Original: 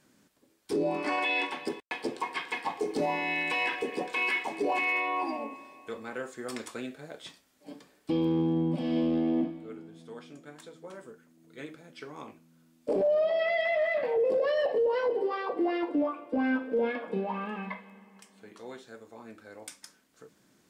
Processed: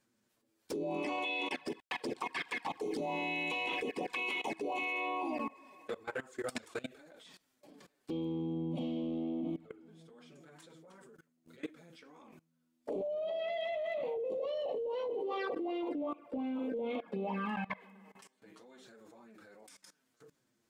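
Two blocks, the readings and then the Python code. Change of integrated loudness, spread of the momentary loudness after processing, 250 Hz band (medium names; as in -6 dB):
-8.0 dB, 22 LU, -7.5 dB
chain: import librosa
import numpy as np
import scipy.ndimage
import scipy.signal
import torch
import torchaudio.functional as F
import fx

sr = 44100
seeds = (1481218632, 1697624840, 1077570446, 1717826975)

y = fx.env_flanger(x, sr, rest_ms=9.4, full_db=-28.0)
y = fx.level_steps(y, sr, step_db=21)
y = F.gain(torch.from_numpy(y), 6.0).numpy()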